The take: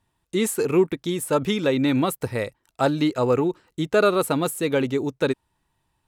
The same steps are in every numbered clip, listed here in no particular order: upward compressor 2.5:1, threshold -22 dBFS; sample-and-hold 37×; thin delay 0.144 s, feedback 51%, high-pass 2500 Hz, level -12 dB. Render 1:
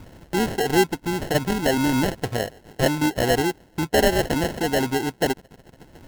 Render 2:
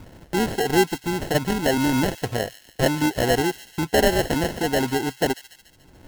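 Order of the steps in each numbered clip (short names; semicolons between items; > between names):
thin delay > upward compressor > sample-and-hold; upward compressor > sample-and-hold > thin delay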